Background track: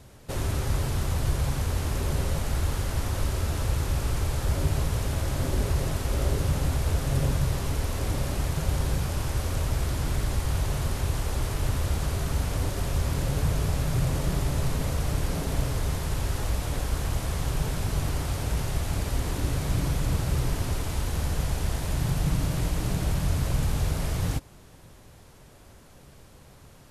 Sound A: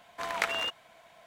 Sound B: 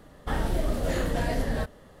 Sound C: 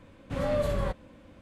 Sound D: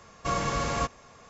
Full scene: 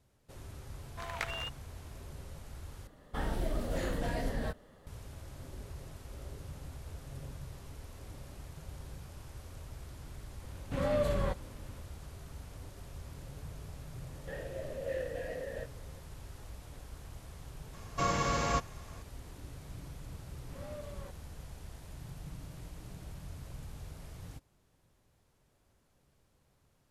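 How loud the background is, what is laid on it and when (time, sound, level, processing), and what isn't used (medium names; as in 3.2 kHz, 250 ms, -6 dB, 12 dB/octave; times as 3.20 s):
background track -20 dB
0.79 s: add A -8 dB
2.87 s: replace with B -7 dB
10.41 s: add C -2.5 dB
14.00 s: add B -1 dB + vowel filter e
17.73 s: add D -2.5 dB
20.19 s: add C -18 dB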